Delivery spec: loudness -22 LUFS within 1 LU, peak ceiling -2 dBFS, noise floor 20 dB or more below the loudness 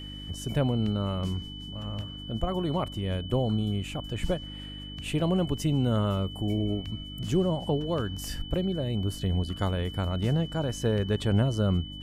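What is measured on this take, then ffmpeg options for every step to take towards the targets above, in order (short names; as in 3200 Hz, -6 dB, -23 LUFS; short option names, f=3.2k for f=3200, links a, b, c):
hum 50 Hz; harmonics up to 300 Hz; hum level -41 dBFS; steady tone 3000 Hz; tone level -42 dBFS; loudness -29.5 LUFS; peak -12.0 dBFS; loudness target -22.0 LUFS
-> -af "bandreject=f=50:t=h:w=4,bandreject=f=100:t=h:w=4,bandreject=f=150:t=h:w=4,bandreject=f=200:t=h:w=4,bandreject=f=250:t=h:w=4,bandreject=f=300:t=h:w=4"
-af "bandreject=f=3k:w=30"
-af "volume=7.5dB"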